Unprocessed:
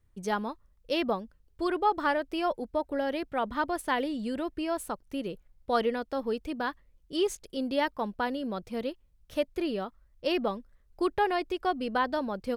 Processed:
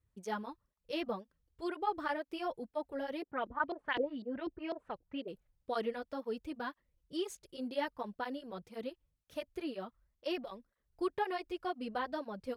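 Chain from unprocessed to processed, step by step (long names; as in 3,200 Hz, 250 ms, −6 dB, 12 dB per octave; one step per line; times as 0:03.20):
0:03.22–0:05.28: auto-filter low-pass saw up 4 Hz 330–4,500 Hz
through-zero flanger with one copy inverted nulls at 2 Hz, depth 5.3 ms
level −6 dB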